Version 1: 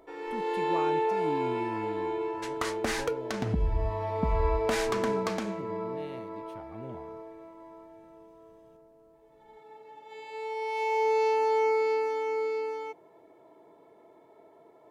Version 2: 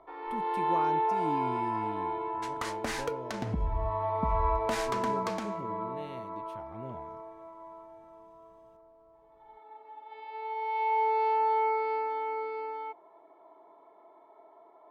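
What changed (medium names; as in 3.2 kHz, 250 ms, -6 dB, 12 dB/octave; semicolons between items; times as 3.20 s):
first sound: add cabinet simulation 400–3300 Hz, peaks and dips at 480 Hz -8 dB, 720 Hz +5 dB, 1.1 kHz +9 dB, 1.7 kHz -5 dB, 2.7 kHz -9 dB; second sound -3.5 dB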